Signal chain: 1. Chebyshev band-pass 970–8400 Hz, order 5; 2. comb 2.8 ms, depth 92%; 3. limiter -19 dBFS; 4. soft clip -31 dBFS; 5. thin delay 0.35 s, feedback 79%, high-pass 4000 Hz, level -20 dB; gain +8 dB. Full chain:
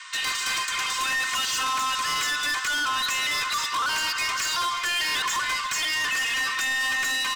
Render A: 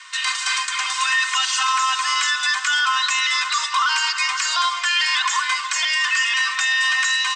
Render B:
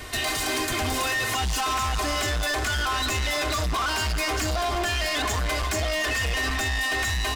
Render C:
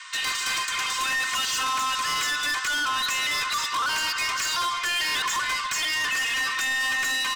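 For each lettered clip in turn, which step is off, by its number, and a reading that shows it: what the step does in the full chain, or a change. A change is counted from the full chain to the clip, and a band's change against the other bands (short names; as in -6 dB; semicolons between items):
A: 4, distortion -9 dB; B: 1, 125 Hz band +24.0 dB; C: 5, echo-to-direct -29.0 dB to none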